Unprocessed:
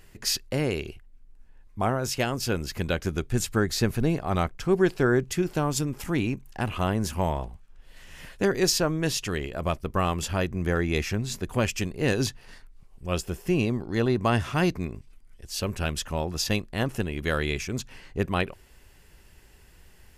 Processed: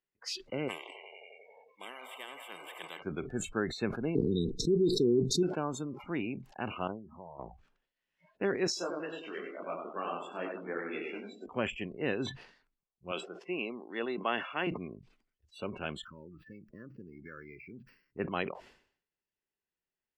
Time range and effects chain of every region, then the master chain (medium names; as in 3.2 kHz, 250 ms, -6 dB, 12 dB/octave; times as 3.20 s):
0.68–3.02 s: Butterworth band-stop 1.4 kHz, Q 2.1 + bucket-brigade echo 89 ms, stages 2048, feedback 73%, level -16 dB + spectrum-flattening compressor 10:1
4.15–5.43 s: dynamic bell 3.3 kHz, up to +6 dB, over -53 dBFS, Q 4.1 + brick-wall FIR band-stop 480–3600 Hz + level flattener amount 100%
6.87–7.39 s: low-pass 1.3 kHz 24 dB/octave + compression, threshold -34 dBFS
8.67–11.46 s: high-pass 220 Hz 24 dB/octave + feedback delay 93 ms, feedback 44%, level -3.5 dB + detune thickener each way 37 cents
13.11–14.67 s: band-pass 230–5300 Hz + tilt EQ +2 dB/octave
16.02–18.19 s: static phaser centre 1.8 kHz, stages 4 + compression 10:1, threshold -32 dBFS + careless resampling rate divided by 6×, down filtered, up hold
whole clip: spectral noise reduction 29 dB; three-band isolator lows -19 dB, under 170 Hz, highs -23 dB, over 5.9 kHz; decay stretcher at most 100 dB/s; trim -7 dB